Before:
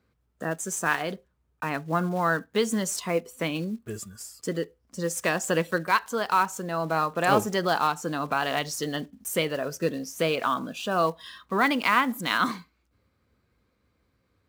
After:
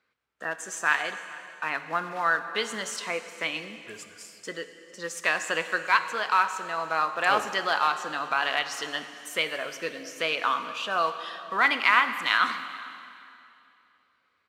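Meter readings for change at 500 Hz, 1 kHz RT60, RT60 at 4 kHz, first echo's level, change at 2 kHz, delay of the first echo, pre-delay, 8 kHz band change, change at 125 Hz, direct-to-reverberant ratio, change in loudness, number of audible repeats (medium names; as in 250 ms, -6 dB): -6.0 dB, 2.6 s, 2.5 s, -22.5 dB, +3.5 dB, 448 ms, 5 ms, -4.5 dB, -17.0 dB, 9.0 dB, +0.5 dB, 1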